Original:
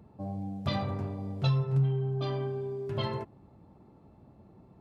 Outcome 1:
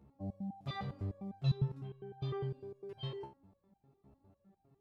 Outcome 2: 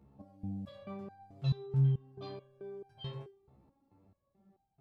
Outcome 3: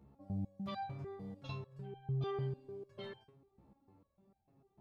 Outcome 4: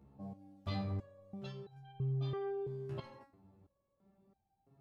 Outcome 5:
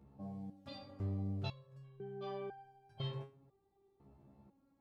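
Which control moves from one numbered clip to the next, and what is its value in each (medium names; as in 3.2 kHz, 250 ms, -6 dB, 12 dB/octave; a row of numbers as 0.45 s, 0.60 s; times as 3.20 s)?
resonator arpeggio, rate: 9.9 Hz, 4.6 Hz, 6.7 Hz, 3 Hz, 2 Hz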